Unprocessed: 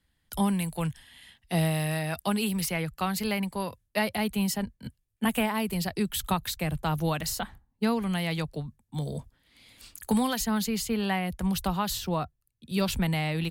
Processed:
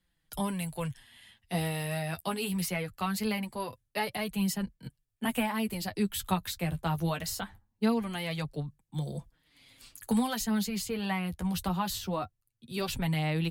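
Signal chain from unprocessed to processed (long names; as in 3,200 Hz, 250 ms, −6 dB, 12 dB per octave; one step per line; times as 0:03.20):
flanger 0.22 Hz, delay 5.5 ms, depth 6.6 ms, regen +17%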